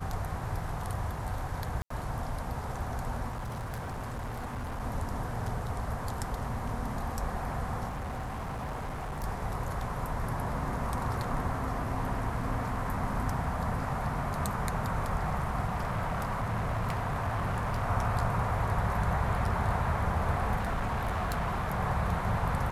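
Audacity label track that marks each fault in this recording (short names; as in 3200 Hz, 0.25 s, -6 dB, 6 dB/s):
1.820000	1.900000	gap 84 ms
3.310000	4.810000	clipped -33 dBFS
7.880000	9.240000	clipped -33 dBFS
15.670000	17.840000	clipped -27 dBFS
20.560000	21.800000	clipped -27 dBFS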